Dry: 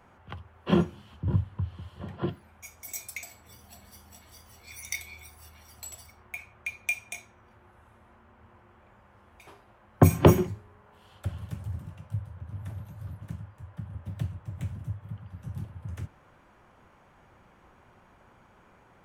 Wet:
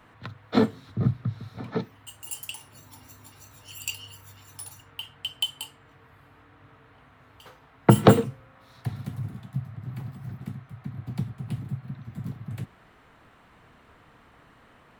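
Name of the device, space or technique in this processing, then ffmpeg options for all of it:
nightcore: -af "asetrate=56007,aresample=44100,volume=1.33"

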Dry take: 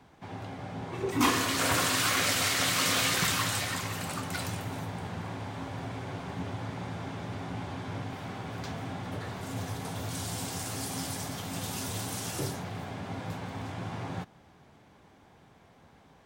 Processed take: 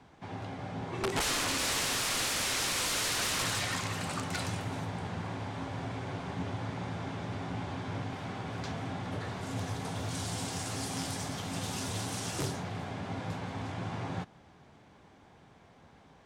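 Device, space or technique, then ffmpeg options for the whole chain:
overflowing digital effects unit: -af "aeval=exprs='(mod(15.8*val(0)+1,2)-1)/15.8':c=same,lowpass=9000"

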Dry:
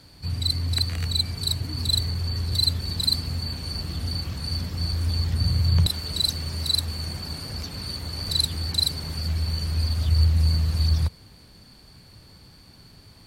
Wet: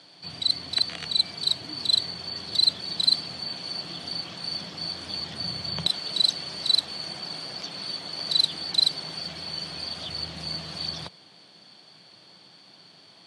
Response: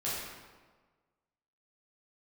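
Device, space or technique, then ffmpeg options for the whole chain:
television speaker: -af "highpass=f=190:w=0.5412,highpass=f=190:w=1.3066,equalizer=f=240:t=q:w=4:g=-10,equalizer=f=440:t=q:w=4:g=-3,equalizer=f=690:t=q:w=4:g=5,equalizer=f=3300:t=q:w=4:g=9,equalizer=f=7300:t=q:w=4:g=-5,lowpass=f=8200:w=0.5412,lowpass=f=8200:w=1.3066"

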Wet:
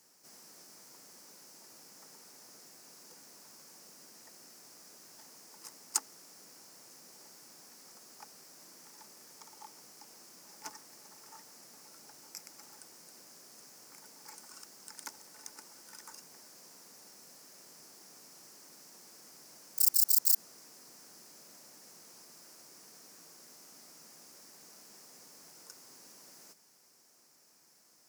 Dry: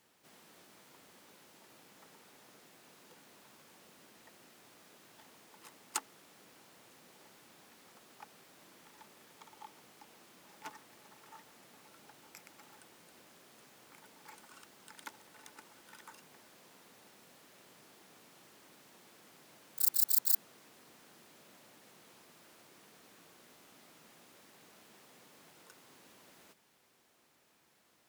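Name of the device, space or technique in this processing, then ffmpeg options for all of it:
over-bright horn tweeter: -af "highshelf=f=4300:t=q:w=3:g=7,alimiter=limit=0.282:level=0:latency=1:release=36,highpass=120"

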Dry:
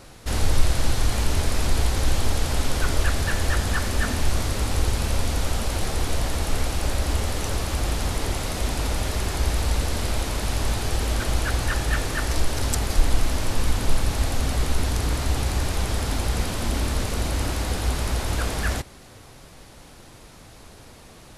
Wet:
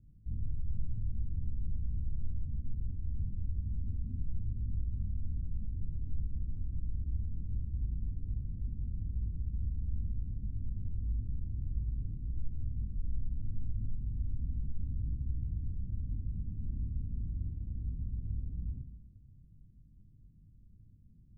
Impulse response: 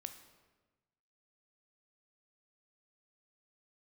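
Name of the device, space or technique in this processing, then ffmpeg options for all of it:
club heard from the street: -filter_complex "[0:a]alimiter=limit=0.178:level=0:latency=1:release=56,lowpass=f=190:w=0.5412,lowpass=f=190:w=1.3066[s0];[1:a]atrim=start_sample=2205[s1];[s0][s1]afir=irnorm=-1:irlink=0,volume=0.531"

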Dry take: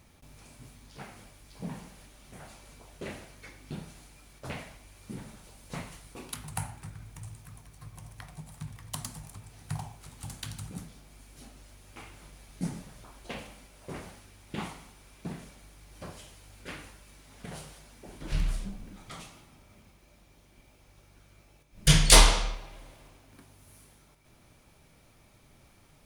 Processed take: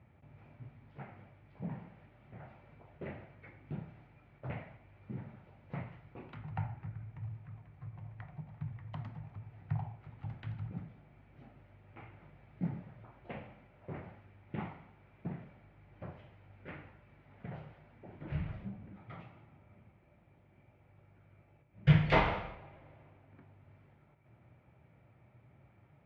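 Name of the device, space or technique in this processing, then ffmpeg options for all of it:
bass cabinet: -af "highpass=f=67:w=0.5412,highpass=f=67:w=1.3066,equalizer=f=120:t=q:w=4:g=8,equalizer=f=260:t=q:w=4:g=-4,equalizer=f=440:t=q:w=4:g=-3,equalizer=f=1100:t=q:w=4:g=-6,lowpass=f=2100:w=0.5412,lowpass=f=2100:w=1.3066,equalizer=f=1600:t=o:w=0.29:g=-4.5,volume=0.75"

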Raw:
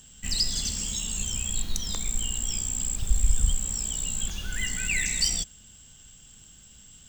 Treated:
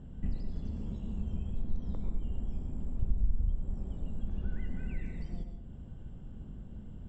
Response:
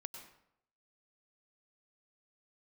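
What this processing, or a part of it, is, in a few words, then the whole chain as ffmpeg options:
television next door: -filter_complex "[0:a]acompressor=threshold=0.00794:ratio=3,lowpass=500[s0];[1:a]atrim=start_sample=2205[s1];[s0][s1]afir=irnorm=-1:irlink=0,volume=6.68"

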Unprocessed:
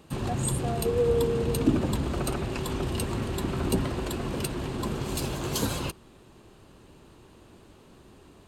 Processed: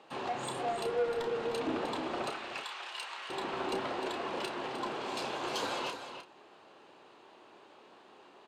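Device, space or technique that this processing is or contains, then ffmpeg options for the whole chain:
intercom: -filter_complex "[0:a]asettb=1/sr,asplit=3[s0][s1][s2];[s0]atrim=end=2.304[s3];[s1]atrim=start=2.3:end=3.3,asetpts=PTS-STARTPTS,afade=t=in:d=0.004:c=qsin,afade=t=out:st=0.996:d=0.004:c=qsin,highpass=1400[s4];[s2]atrim=start=3.296[s5];[s3][s4]acrossfade=d=0.004:c1=hsin:c2=qsin[s6];[s6][s5]acrossfade=d=0.004:c1=qsin:c2=hsin,highpass=500,lowpass=4000,equalizer=f=800:t=o:w=0.52:g=4,asoftclip=type=tanh:threshold=0.0398,asplit=2[s7][s8];[s8]adelay=31,volume=0.422[s9];[s7][s9]amix=inputs=2:normalize=0,aecho=1:1:306:0.355"

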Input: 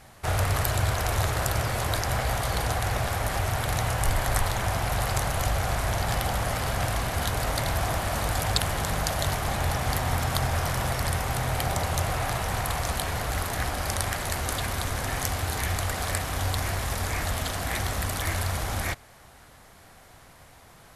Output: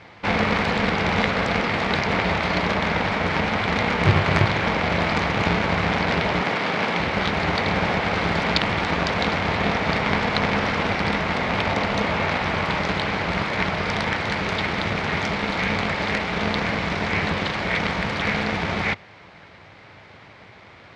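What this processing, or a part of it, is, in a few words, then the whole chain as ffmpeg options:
ring modulator pedal into a guitar cabinet: -filter_complex "[0:a]aeval=exprs='val(0)*sgn(sin(2*PI*120*n/s))':c=same,highpass=89,equalizer=f=100:t=q:w=4:g=8,equalizer=f=240:t=q:w=4:g=-6,equalizer=f=2200:t=q:w=4:g=7,lowpass=f=4400:w=0.5412,lowpass=f=4400:w=1.3066,asettb=1/sr,asplit=3[s0][s1][s2];[s0]atrim=end=6.424[s3];[s1]atrim=start=6.42:end=7,asetpts=PTS-STARTPTS,afade=t=in:d=0.004:c=qsin,afade=t=out:st=0.576:d=0.004:c=qsin,highpass=180[s4];[s2]atrim=start=6.996[s5];[s3][s4]acrossfade=d=0.004:c1=hsin:c2=qsin[s6];[s6][s5]acrossfade=d=0.004:c1=qsin:c2=hsin,volume=1.88"

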